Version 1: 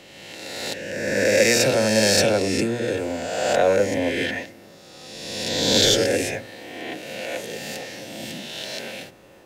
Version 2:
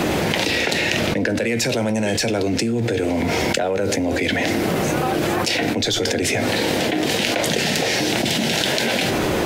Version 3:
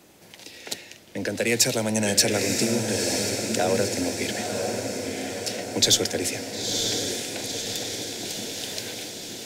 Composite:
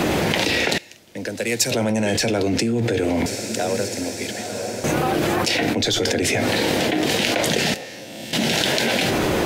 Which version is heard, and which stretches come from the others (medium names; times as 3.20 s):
2
0.78–1.71 s: from 3
3.26–4.84 s: from 3
7.74–8.33 s: from 1